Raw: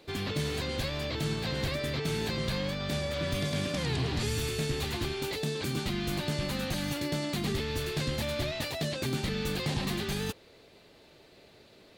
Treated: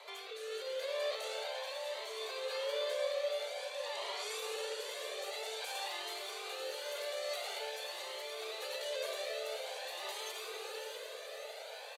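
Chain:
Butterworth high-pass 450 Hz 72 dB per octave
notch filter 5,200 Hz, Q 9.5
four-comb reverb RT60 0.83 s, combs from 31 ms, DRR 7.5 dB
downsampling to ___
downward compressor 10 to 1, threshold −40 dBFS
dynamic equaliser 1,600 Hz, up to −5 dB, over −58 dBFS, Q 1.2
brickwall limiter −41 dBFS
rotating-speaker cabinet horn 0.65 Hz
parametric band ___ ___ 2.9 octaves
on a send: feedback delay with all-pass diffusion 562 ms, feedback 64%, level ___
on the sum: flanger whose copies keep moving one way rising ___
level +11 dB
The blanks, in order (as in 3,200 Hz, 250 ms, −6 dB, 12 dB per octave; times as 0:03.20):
32,000 Hz, 770 Hz, +5.5 dB, −4.5 dB, 0.49 Hz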